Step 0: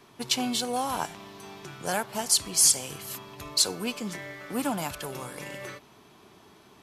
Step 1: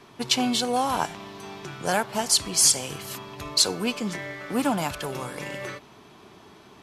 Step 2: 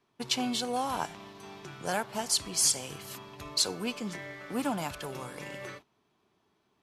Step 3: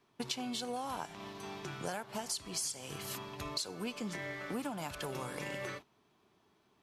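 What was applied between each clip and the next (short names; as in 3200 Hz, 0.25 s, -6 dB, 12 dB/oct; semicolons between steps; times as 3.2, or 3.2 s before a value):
high shelf 10000 Hz -11 dB; gain +5 dB
gate -41 dBFS, range -16 dB; gain -7 dB
compressor 10:1, threshold -37 dBFS, peak gain reduction 16 dB; gain +2 dB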